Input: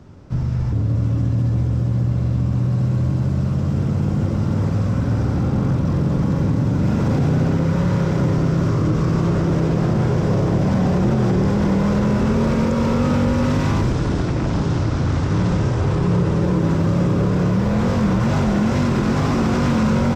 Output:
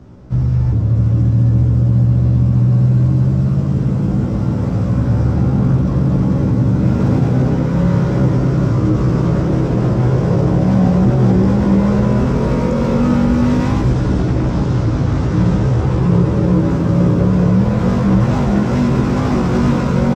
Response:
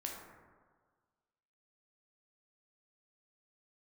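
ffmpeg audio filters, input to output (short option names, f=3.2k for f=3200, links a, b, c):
-filter_complex "[0:a]tiltshelf=f=970:g=3,asplit=2[a][b];[b]adelay=16,volume=-3dB[c];[a][c]amix=inputs=2:normalize=0"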